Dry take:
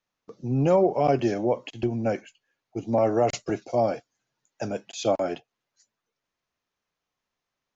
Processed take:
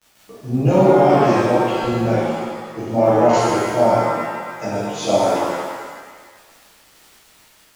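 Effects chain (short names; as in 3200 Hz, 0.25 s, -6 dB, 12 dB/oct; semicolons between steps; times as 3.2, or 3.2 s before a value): crackle 68/s -36 dBFS; shimmer reverb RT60 1.6 s, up +7 st, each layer -8 dB, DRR -11.5 dB; gain -3.5 dB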